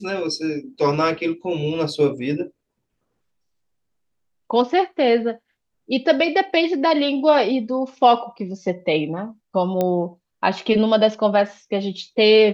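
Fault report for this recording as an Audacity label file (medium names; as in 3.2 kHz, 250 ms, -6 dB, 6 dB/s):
9.810000	9.810000	pop -9 dBFS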